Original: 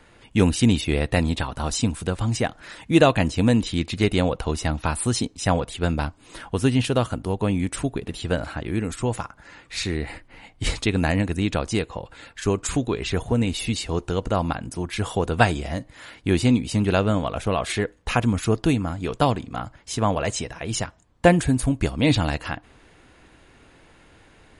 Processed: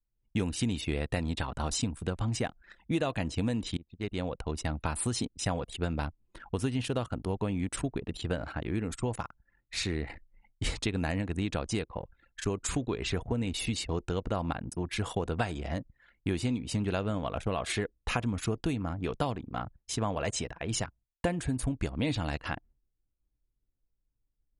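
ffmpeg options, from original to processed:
ffmpeg -i in.wav -filter_complex "[0:a]asplit=2[link_01][link_02];[link_01]atrim=end=3.77,asetpts=PTS-STARTPTS,afade=type=out:start_time=3.766:duration=0.004:curve=hsin:silence=0.0944061[link_03];[link_02]atrim=start=3.77,asetpts=PTS-STARTPTS,afade=type=in:duration=1.18:silence=0.0944061[link_04];[link_03][link_04]concat=n=2:v=0:a=1,agate=range=-33dB:threshold=-43dB:ratio=3:detection=peak,anlmdn=3.98,acompressor=threshold=-22dB:ratio=6,volume=-4.5dB" out.wav

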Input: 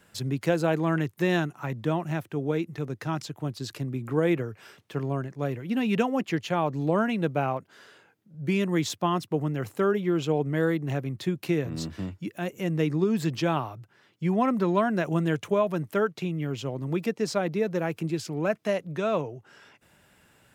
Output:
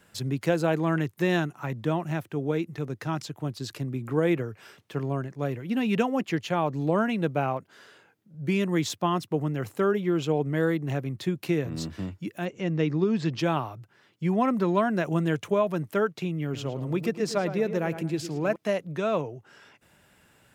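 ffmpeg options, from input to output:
ffmpeg -i in.wav -filter_complex "[0:a]asettb=1/sr,asplit=3[link_01][link_02][link_03];[link_01]atrim=end=12.454[link_04];[link_02]atrim=start=12.45:end=13.39,asetpts=PTS-STARTPTS,afade=type=in:duration=0.004:curve=qsin,afade=type=out:start_time=0.936:duration=0.004:curve=qsin,lowpass=frequency=5900:width=0.5412,lowpass=frequency=5900:width=1.3066[link_05];[link_03]atrim=start=13.386[link_06];[link_04][link_05]acrossfade=duration=0.004:curve1=hsin:curve2=qsin[link_07];[link_07][link_06]acrossfade=duration=0.004:curve1=qsin:curve2=hsin,asettb=1/sr,asplit=3[link_08][link_09][link_10];[link_08]atrim=end=16.434[link_11];[link_09]atrim=start=16.43:end=18.56,asetpts=PTS-STARTPTS,afade=type=in:duration=0.004:curve=qsin,afade=type=out:start_time=2.126:duration=0.004:curve=qsin,asplit=2[link_12][link_13];[link_13]adelay=110,lowpass=frequency=2900:poles=1,volume=-10dB,asplit=2[link_14][link_15];[link_15]adelay=110,lowpass=frequency=2900:poles=1,volume=0.33,asplit=2[link_16][link_17];[link_17]adelay=110,lowpass=frequency=2900:poles=1,volume=0.33,asplit=2[link_18][link_19];[link_19]adelay=110,lowpass=frequency=2900:poles=1,volume=0.33[link_20];[link_12][link_14][link_16][link_18][link_20]amix=inputs=5:normalize=0,atrim=end_sample=93933[link_21];[link_10]atrim=start=18.556[link_22];[link_11][link_21]acrossfade=duration=0.004:curve1=hsin:curve2=qsin[link_23];[link_23][link_22]acrossfade=duration=0.004:curve1=qsin:curve2=hsin" out.wav

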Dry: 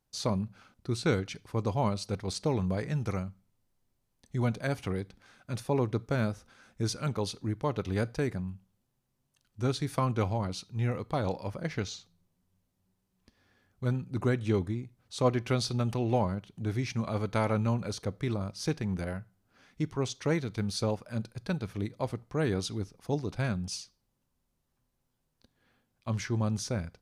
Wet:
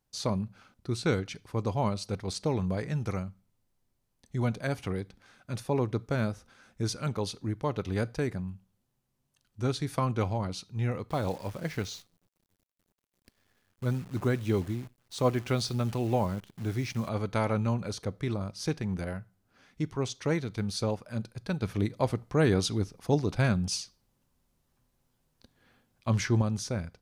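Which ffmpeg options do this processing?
ffmpeg -i in.wav -filter_complex "[0:a]asettb=1/sr,asplit=3[link_01][link_02][link_03];[link_01]atrim=end=11.094[link_04];[link_02]atrim=start=11.09:end=17.09,asetpts=PTS-STARTPTS,afade=type=in:duration=0.004:curve=qsin,afade=type=out:start_time=5.996:duration=0.004:curve=qsin,acrusher=bits=9:dc=4:mix=0:aa=0.000001[link_05];[link_03]atrim=start=17.086[link_06];[link_04][link_05]acrossfade=duration=0.004:curve1=hsin:curve2=qsin[link_07];[link_07][link_06]acrossfade=duration=0.004:curve1=qsin:curve2=hsin,asettb=1/sr,asplit=3[link_08][link_09][link_10];[link_08]atrim=end=21.624[link_11];[link_09]atrim=start=21.62:end=26.42,asetpts=PTS-STARTPTS,afade=type=in:duration=0.004:curve=qsin,afade=type=out:start_time=4.796:duration=0.004:curve=qsin,acontrast=32[link_12];[link_10]atrim=start=26.416[link_13];[link_11][link_12]acrossfade=duration=0.004:curve1=hsin:curve2=qsin[link_14];[link_14][link_13]acrossfade=duration=0.004:curve1=qsin:curve2=hsin" out.wav

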